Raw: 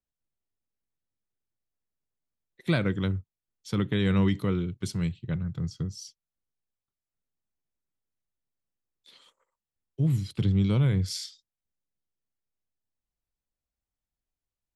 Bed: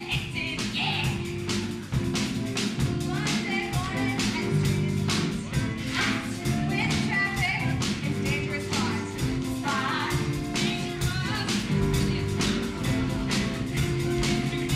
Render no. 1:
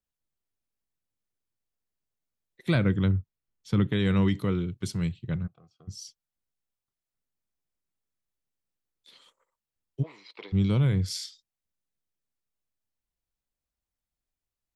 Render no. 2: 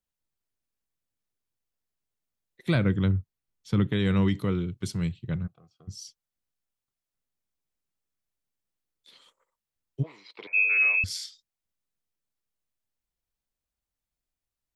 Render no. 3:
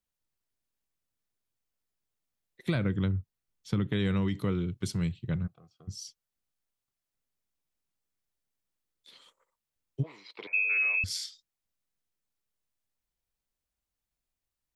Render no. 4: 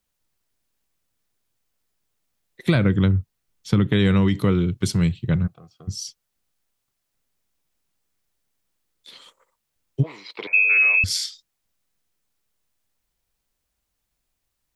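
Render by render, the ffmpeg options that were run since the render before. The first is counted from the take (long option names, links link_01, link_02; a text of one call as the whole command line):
ffmpeg -i in.wav -filter_complex "[0:a]asettb=1/sr,asplit=3[link_01][link_02][link_03];[link_01]atrim=end=2.754[link_04];[link_02]atrim=start=2.75:end=3.87,asetpts=PTS-STARTPTS,afade=type=in:duration=0.004:curve=qsin,afade=type=out:start_time=1.116:duration=0.004:curve=qsin,bass=frequency=250:gain=5,treble=frequency=4000:gain=-6[link_05];[link_03]atrim=start=3.866[link_06];[link_04][link_05]acrossfade=duration=0.004:curve1=hsin:curve2=qsin[link_07];[link_07][link_06]acrossfade=duration=0.004:curve1=qsin:curve2=hsin,asplit=3[link_08][link_09][link_10];[link_08]afade=type=out:start_time=5.46:duration=0.02[link_11];[link_09]asplit=3[link_12][link_13][link_14];[link_12]bandpass=frequency=730:width_type=q:width=8,volume=0dB[link_15];[link_13]bandpass=frequency=1090:width_type=q:width=8,volume=-6dB[link_16];[link_14]bandpass=frequency=2440:width_type=q:width=8,volume=-9dB[link_17];[link_15][link_16][link_17]amix=inputs=3:normalize=0,afade=type=in:start_time=5.46:duration=0.02,afade=type=out:start_time=5.87:duration=0.02[link_18];[link_10]afade=type=in:start_time=5.87:duration=0.02[link_19];[link_11][link_18][link_19]amix=inputs=3:normalize=0,asplit=3[link_20][link_21][link_22];[link_20]afade=type=out:start_time=10.02:duration=0.02[link_23];[link_21]highpass=frequency=470:width=0.5412,highpass=frequency=470:width=1.3066,equalizer=frequency=980:width_type=q:width=4:gain=9,equalizer=frequency=1500:width_type=q:width=4:gain=-7,equalizer=frequency=2200:width_type=q:width=4:gain=7,equalizer=frequency=3200:width_type=q:width=4:gain=-8,lowpass=frequency=4200:width=0.5412,lowpass=frequency=4200:width=1.3066,afade=type=in:start_time=10.02:duration=0.02,afade=type=out:start_time=10.52:duration=0.02[link_24];[link_22]afade=type=in:start_time=10.52:duration=0.02[link_25];[link_23][link_24][link_25]amix=inputs=3:normalize=0" out.wav
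ffmpeg -i in.wav -filter_complex "[0:a]asettb=1/sr,asplit=3[link_01][link_02][link_03];[link_01]atrim=end=10.474[link_04];[link_02]atrim=start=10.47:end=11.04,asetpts=PTS-STARTPTS,afade=type=in:duration=0.004:curve=qsin,afade=type=out:start_time=0.566:duration=0.004:curve=qsin,lowpass=frequency=2300:width_type=q:width=0.5098,lowpass=frequency=2300:width_type=q:width=0.6013,lowpass=frequency=2300:width_type=q:width=0.9,lowpass=frequency=2300:width_type=q:width=2.563,afreqshift=-2700[link_05];[link_03]atrim=start=11.036[link_06];[link_04][link_05]acrossfade=duration=0.004:curve1=hsin:curve2=qsin[link_07];[link_07][link_06]acrossfade=duration=0.004:curve1=qsin:curve2=hsin" out.wav
ffmpeg -i in.wav -af "acompressor=threshold=-25dB:ratio=6" out.wav
ffmpeg -i in.wav -af "volume=10.5dB" out.wav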